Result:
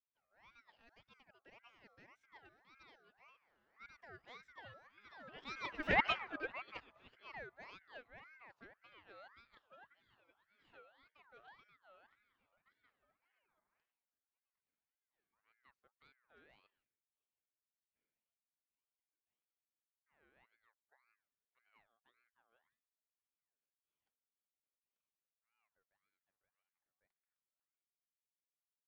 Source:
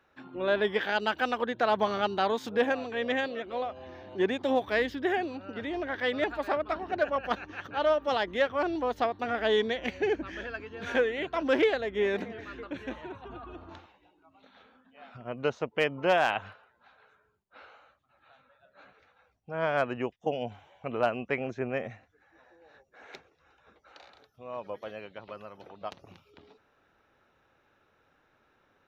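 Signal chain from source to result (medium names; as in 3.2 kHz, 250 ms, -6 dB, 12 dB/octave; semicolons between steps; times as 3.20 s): Doppler pass-by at 6.01 s, 32 m/s, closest 1.8 m; treble shelf 5.6 kHz -9.5 dB; ring modulator with a swept carrier 1.4 kHz, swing 35%, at 1.8 Hz; trim +4.5 dB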